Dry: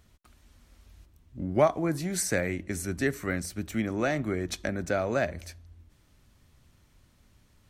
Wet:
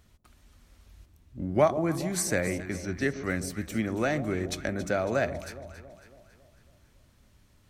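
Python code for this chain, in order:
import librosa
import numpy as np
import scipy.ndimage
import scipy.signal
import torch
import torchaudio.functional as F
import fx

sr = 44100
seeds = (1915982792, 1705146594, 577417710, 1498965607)

y = fx.ellip_lowpass(x, sr, hz=6000.0, order=4, stop_db=40, at=(2.58, 3.24))
y = fx.echo_alternate(y, sr, ms=138, hz=910.0, feedback_pct=71, wet_db=-11)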